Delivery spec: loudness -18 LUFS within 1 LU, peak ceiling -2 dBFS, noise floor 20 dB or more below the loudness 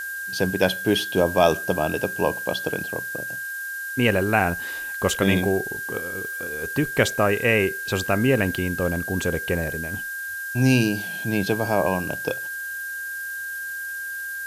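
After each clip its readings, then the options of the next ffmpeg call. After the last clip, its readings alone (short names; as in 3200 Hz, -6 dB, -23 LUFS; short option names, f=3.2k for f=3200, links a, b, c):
steady tone 1600 Hz; tone level -29 dBFS; noise floor -32 dBFS; noise floor target -44 dBFS; loudness -24.0 LUFS; peak -3.0 dBFS; loudness target -18.0 LUFS
-> -af "bandreject=f=1.6k:w=30"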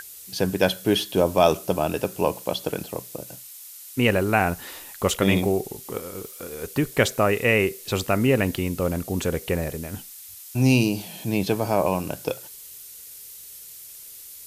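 steady tone none; noise floor -43 dBFS; noise floor target -44 dBFS
-> -af "afftdn=nr=6:nf=-43"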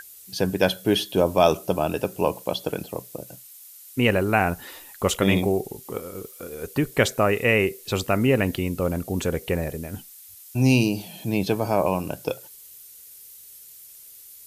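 noise floor -46 dBFS; loudness -23.5 LUFS; peak -3.0 dBFS; loudness target -18.0 LUFS
-> -af "volume=5.5dB,alimiter=limit=-2dB:level=0:latency=1"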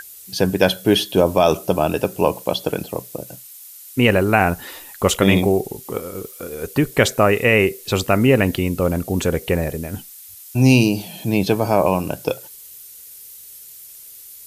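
loudness -18.5 LUFS; peak -2.0 dBFS; noise floor -41 dBFS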